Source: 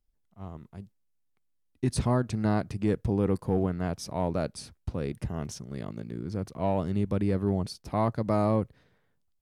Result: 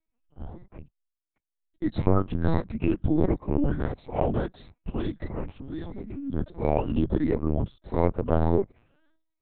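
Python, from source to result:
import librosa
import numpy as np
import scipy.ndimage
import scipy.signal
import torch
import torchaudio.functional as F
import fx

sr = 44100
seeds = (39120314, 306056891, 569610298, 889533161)

y = fx.spec_ripple(x, sr, per_octave=0.96, drift_hz=1.5, depth_db=18)
y = fx.pitch_keep_formants(y, sr, semitones=-4.5)
y = fx.lpc_vocoder(y, sr, seeds[0], excitation='pitch_kept', order=8)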